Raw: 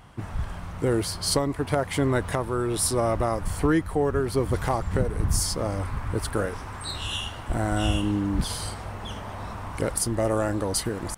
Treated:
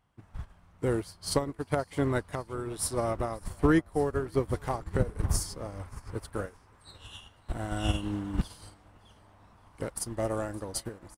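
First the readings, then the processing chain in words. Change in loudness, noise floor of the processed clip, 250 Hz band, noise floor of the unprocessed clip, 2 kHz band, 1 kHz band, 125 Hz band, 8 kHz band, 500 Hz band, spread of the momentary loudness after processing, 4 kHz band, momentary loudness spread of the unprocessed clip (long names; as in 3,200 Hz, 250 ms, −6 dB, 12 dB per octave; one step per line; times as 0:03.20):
−5.0 dB, −60 dBFS, −5.0 dB, −38 dBFS, −6.5 dB, −7.0 dB, −6.0 dB, −8.5 dB, −5.5 dB, 17 LU, −10.0 dB, 11 LU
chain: repeating echo 566 ms, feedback 53%, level −17.5 dB
expander for the loud parts 2.5 to 1, over −34 dBFS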